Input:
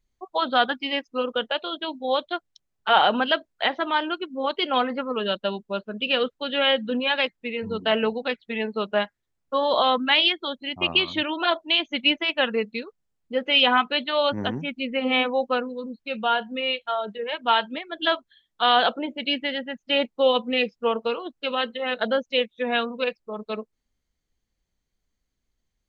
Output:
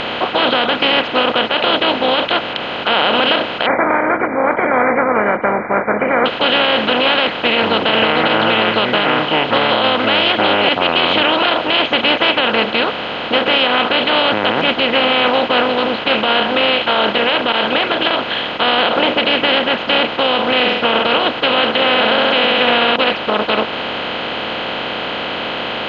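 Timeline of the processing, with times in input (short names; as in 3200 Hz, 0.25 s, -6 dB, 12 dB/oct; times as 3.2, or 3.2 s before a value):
3.66–6.26 brick-wall FIR low-pass 2400 Hz
7.75–10.69 echoes that change speed 0.134 s, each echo -6 st, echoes 2
17.52–18.11 compressor, threshold -30 dBFS
20.55–21.09 flutter echo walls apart 8.2 m, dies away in 0.22 s
21.75–22.96 flutter echo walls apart 11.5 m, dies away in 0.76 s
whole clip: per-bin compression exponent 0.2; limiter -3.5 dBFS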